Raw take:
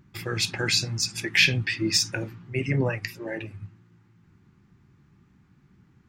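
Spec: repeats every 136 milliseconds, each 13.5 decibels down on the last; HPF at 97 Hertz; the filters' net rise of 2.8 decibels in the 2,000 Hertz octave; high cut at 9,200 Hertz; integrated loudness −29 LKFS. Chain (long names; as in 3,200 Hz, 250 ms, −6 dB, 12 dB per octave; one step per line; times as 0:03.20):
high-pass filter 97 Hz
low-pass filter 9,200 Hz
parametric band 2,000 Hz +3.5 dB
repeating echo 136 ms, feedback 21%, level −13.5 dB
level −5.5 dB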